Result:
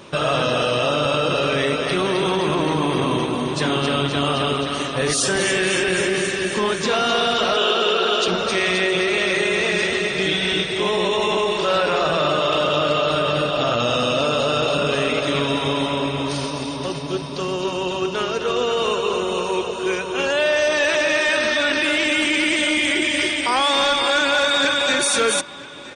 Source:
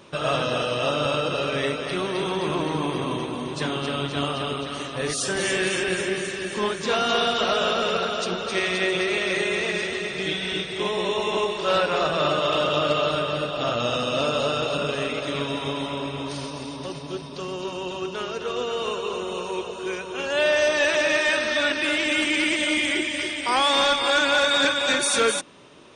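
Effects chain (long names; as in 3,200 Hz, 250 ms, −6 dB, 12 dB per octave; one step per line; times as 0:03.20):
in parallel at −0.5 dB: compressor whose output falls as the input rises −27 dBFS
0:07.57–0:08.28: on the sum: loudspeaker in its box 280–8,200 Hz, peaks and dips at 380 Hz +8 dB, 590 Hz −5 dB, 2,100 Hz −5 dB, 3,100 Hz +7 dB, 5,400 Hz −4 dB
repeating echo 973 ms, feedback 40%, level −20 dB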